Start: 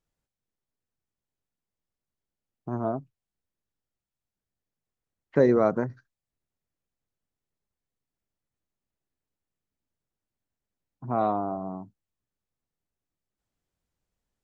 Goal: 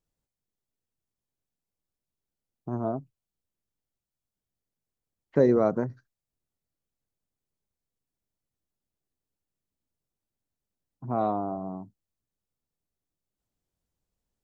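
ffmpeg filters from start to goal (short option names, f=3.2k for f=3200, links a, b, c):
-af "equalizer=f=1.9k:t=o:w=2:g=-5.5"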